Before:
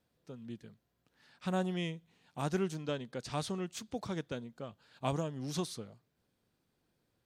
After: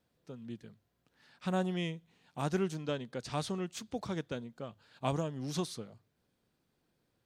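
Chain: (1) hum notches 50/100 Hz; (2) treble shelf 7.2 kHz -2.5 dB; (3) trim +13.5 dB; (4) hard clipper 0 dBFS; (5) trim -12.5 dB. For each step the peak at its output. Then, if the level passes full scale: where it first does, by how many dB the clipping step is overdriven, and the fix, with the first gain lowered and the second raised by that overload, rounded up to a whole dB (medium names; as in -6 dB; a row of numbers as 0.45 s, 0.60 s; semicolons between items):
-18.0 dBFS, -18.0 dBFS, -4.5 dBFS, -4.5 dBFS, -17.0 dBFS; nothing clips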